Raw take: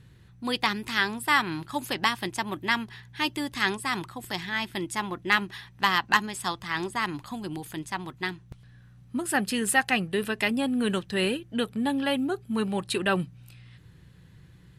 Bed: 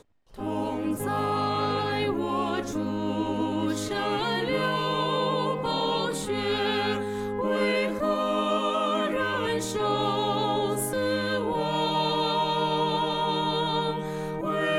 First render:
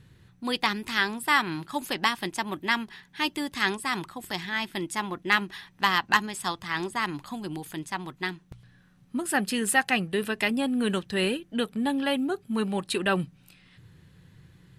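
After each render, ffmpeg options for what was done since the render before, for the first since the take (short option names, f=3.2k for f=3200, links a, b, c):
-af "bandreject=f=60:t=h:w=4,bandreject=f=120:t=h:w=4"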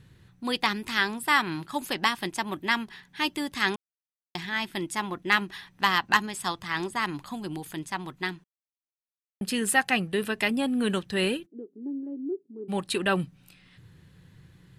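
-filter_complex "[0:a]asplit=3[a][b][c];[a]afade=t=out:st=11.45:d=0.02[d];[b]asuperpass=centerf=340:order=4:qfactor=3,afade=t=in:st=11.45:d=0.02,afade=t=out:st=12.68:d=0.02[e];[c]afade=t=in:st=12.68:d=0.02[f];[d][e][f]amix=inputs=3:normalize=0,asplit=5[g][h][i][j][k];[g]atrim=end=3.76,asetpts=PTS-STARTPTS,afade=t=out:st=3.756:d=0.004:c=hsin[l];[h]atrim=start=3.76:end=4.35,asetpts=PTS-STARTPTS,volume=0[m];[i]atrim=start=4.35:end=8.44,asetpts=PTS-STARTPTS,afade=t=in:d=0.004:c=hsin,afade=t=out:st=4.086:d=0.004:c=hsin[n];[j]atrim=start=8.44:end=9.41,asetpts=PTS-STARTPTS,volume=0[o];[k]atrim=start=9.41,asetpts=PTS-STARTPTS,afade=t=in:d=0.004:c=hsin[p];[l][m][n][o][p]concat=n=5:v=0:a=1"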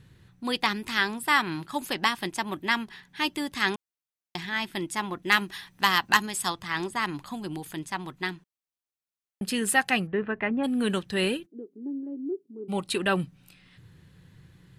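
-filter_complex "[0:a]asettb=1/sr,asplit=3[a][b][c];[a]atrim=end=5.234[d];[b]atrim=start=5.23:end=6.5,asetpts=PTS-STARTPTS,afade=t=in:d=0.004:c=qsin,afade=t=out:st=1.266:d=0.004:c=qsin,highshelf=f=5.4k:g=8.5[e];[c]atrim=start=6.496[f];[d][e]acrossfade=d=0.004:c1=hsin:c2=qsin[g];[g][f]acrossfade=d=0.004:c1=qsin:c2=hsin,asplit=3[h][i][j];[h]afade=t=out:st=10.06:d=0.02[k];[i]lowpass=f=2k:w=0.5412,lowpass=f=2k:w=1.3066,afade=t=in:st=10.06:d=0.02,afade=t=out:st=10.63:d=0.02[l];[j]afade=t=in:st=10.63:d=0.02[m];[k][l][m]amix=inputs=3:normalize=0,asettb=1/sr,asplit=3[n][o][p];[n]atrim=end=12.154[q];[o]atrim=start=12.15:end=12.9,asetpts=PTS-STARTPTS,afade=t=in:d=0.004:c=qsin,afade=t=out:st=0.746:d=0.004:c=qsin,asuperstop=centerf=1700:order=12:qfactor=5.1[r];[p]atrim=start=12.896[s];[q][r]acrossfade=d=0.004:c1=hsin:c2=qsin[t];[t][s]acrossfade=d=0.004:c1=qsin:c2=hsin"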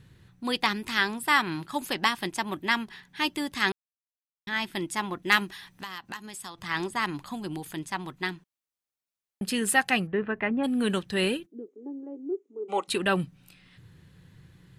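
-filter_complex "[0:a]asettb=1/sr,asplit=3[a][b][c];[a]atrim=end=5.494[d];[b]atrim=start=5.49:end=6.58,asetpts=PTS-STARTPTS,afade=t=in:d=0.004:c=qsin,afade=t=out:st=1.086:d=0.004:c=qsin,acompressor=threshold=-40dB:ratio=3:attack=3.2:release=140:knee=1:detection=peak[e];[c]atrim=start=6.576[f];[d][e]acrossfade=d=0.004:c1=hsin:c2=qsin[g];[g][f]acrossfade=d=0.004:c1=qsin:c2=hsin,asettb=1/sr,asplit=3[h][i][j];[h]atrim=end=11.684[k];[i]atrim=start=11.68:end=12.88,asetpts=PTS-STARTPTS,afade=t=in:d=0.004:c=qsin,afade=t=out:st=1.196:d=0.004:c=qsin,highpass=f=310:w=0.5412,highpass=f=310:w=1.3066,equalizer=f=480:t=q:w=4:g=8,equalizer=f=840:t=q:w=4:g=7,equalizer=f=1.2k:t=q:w=4:g=7,equalizer=f=2.1k:t=q:w=4:g=6,equalizer=f=4.6k:t=q:w=4:g=-10,equalizer=f=6.7k:t=q:w=4:g=9,lowpass=f=7.8k:w=0.5412,lowpass=f=7.8k:w=1.3066[l];[j]atrim=start=12.876[m];[k][l]acrossfade=d=0.004:c1=hsin:c2=qsin[n];[n][m]acrossfade=d=0.004:c1=qsin:c2=hsin,asplit=3[o][p][q];[o]atrim=end=3.72,asetpts=PTS-STARTPTS,afade=t=out:st=3.716:d=0.004:c=hsin[r];[p]atrim=start=3.72:end=4.47,asetpts=PTS-STARTPTS,volume=0[s];[q]atrim=start=4.47,asetpts=PTS-STARTPTS,afade=t=in:d=0.004:c=hsin[t];[r][s][t]concat=n=3:v=0:a=1"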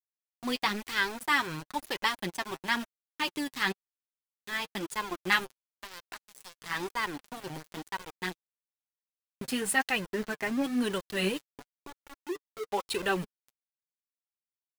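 -af "aeval=exprs='val(0)*gte(abs(val(0)),0.0237)':c=same,flanger=delay=1.9:depth=5.8:regen=21:speed=1:shape=sinusoidal"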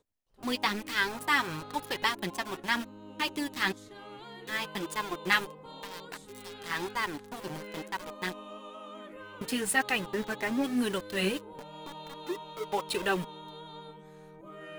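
-filter_complex "[1:a]volume=-19.5dB[a];[0:a][a]amix=inputs=2:normalize=0"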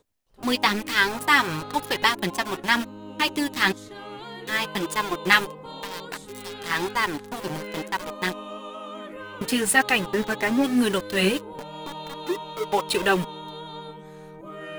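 -af "volume=8dB"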